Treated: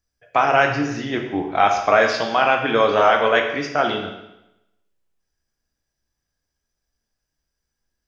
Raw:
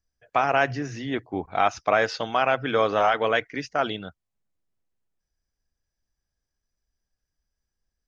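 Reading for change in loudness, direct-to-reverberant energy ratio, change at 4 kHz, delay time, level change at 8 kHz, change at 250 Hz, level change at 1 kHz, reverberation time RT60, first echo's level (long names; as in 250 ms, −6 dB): +6.0 dB, 2.0 dB, +6.0 dB, no echo audible, can't be measured, +6.0 dB, +6.0 dB, 0.90 s, no echo audible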